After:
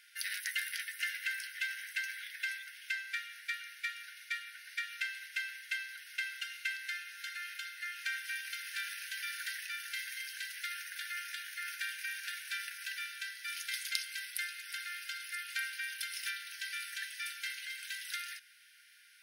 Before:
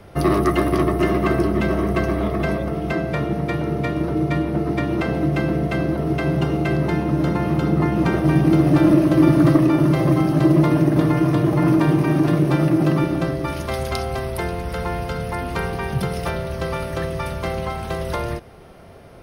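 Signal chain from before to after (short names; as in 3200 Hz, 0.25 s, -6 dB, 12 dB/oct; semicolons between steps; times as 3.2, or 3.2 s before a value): brick-wall FIR high-pass 1400 Hz; high shelf 2100 Hz +7 dB; gain -8.5 dB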